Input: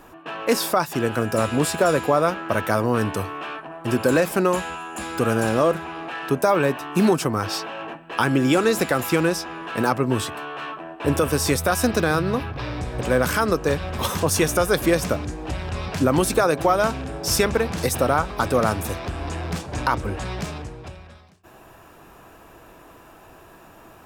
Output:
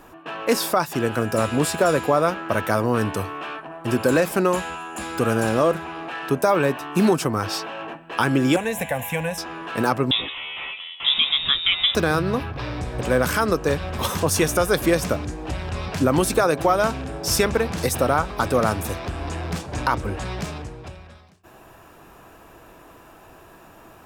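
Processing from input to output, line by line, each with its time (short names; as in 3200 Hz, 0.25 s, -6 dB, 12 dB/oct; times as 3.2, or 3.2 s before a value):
8.56–9.38 fixed phaser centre 1300 Hz, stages 6
10.11–11.95 inverted band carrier 3700 Hz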